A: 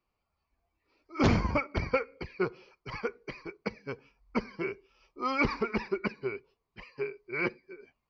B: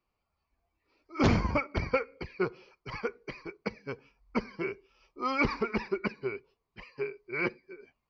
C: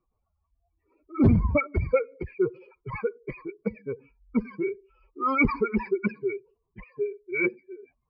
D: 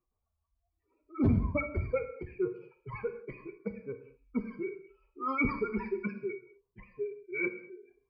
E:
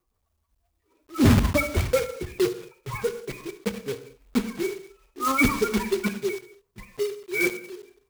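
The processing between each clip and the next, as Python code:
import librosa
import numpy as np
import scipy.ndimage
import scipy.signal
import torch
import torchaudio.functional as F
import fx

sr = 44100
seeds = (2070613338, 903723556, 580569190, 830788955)

y1 = x
y2 = fx.spec_expand(y1, sr, power=2.2)
y2 = fx.env_lowpass(y2, sr, base_hz=1300.0, full_db=-24.5)
y2 = F.gain(torch.from_numpy(y2), 6.0).numpy()
y3 = fx.rev_gated(y2, sr, seeds[0], gate_ms=260, shape='falling', drr_db=6.5)
y3 = F.gain(torch.from_numpy(y3), -8.0).numpy()
y4 = fx.block_float(y3, sr, bits=3)
y4 = F.gain(torch.from_numpy(y4), 8.5).numpy()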